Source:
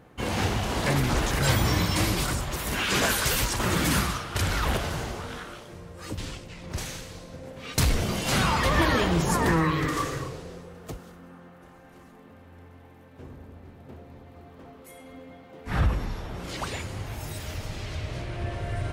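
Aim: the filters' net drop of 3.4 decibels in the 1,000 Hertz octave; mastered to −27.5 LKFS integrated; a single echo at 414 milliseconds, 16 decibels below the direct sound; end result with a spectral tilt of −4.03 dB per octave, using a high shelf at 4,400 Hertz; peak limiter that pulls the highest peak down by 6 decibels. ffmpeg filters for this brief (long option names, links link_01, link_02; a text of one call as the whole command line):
ffmpeg -i in.wav -af "equalizer=frequency=1000:width_type=o:gain=-4.5,highshelf=frequency=4400:gain=4,alimiter=limit=-16dB:level=0:latency=1,aecho=1:1:414:0.158,volume=0.5dB" out.wav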